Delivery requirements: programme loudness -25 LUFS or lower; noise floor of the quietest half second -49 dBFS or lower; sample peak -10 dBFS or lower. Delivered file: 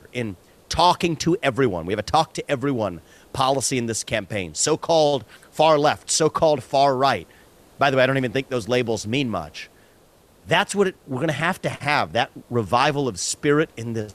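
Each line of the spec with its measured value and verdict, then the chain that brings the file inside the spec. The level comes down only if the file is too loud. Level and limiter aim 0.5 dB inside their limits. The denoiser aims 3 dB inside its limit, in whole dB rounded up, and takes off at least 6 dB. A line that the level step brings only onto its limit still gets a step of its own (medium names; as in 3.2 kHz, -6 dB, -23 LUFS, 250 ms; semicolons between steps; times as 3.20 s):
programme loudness -21.5 LUFS: fail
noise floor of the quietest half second -54 dBFS: pass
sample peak -4.5 dBFS: fail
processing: trim -4 dB; peak limiter -10.5 dBFS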